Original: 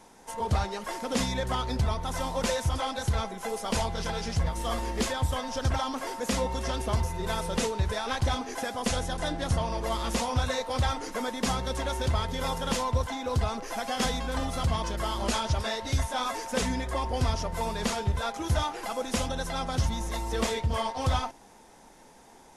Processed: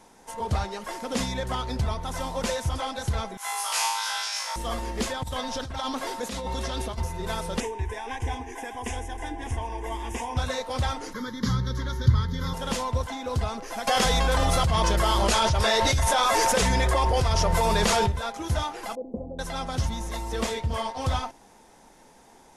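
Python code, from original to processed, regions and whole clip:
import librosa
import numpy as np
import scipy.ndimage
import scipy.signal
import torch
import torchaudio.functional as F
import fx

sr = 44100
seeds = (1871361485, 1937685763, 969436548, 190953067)

y = fx.chain(x, sr, fx.highpass(hz=910.0, slope=24),
    fx.high_shelf(hz=6000.0, db=6.5),
    fx.room_flutter(wall_m=3.2, rt60_s=0.94), at=(3.37, 4.56))
y = fx.chain(y, sr, fx.peak_eq(hz=3800.0, db=6.5, octaves=0.34),
    fx.over_compress(threshold_db=-31.0, ratio=-1.0), at=(5.23, 6.98))
y = fx.chain(y, sr, fx.lowpass(hz=10000.0, slope=12),
    fx.fixed_phaser(hz=870.0, stages=8),
    fx.echo_single(ms=600, db=-13.5), at=(7.6, 10.37))
y = fx.chain(y, sr, fx.peak_eq(hz=120.0, db=15.0, octaves=1.0),
    fx.fixed_phaser(hz=2600.0, stages=6), at=(11.13, 12.54))
y = fx.chain(y, sr, fx.peak_eq(hz=250.0, db=-12.5, octaves=0.27),
    fx.env_flatten(amount_pct=100), at=(13.87, 18.1))
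y = fx.chain(y, sr, fx.cheby2_lowpass(hz=1500.0, order=4, stop_db=50),
    fx.low_shelf(hz=140.0, db=-10.0), at=(18.95, 19.39))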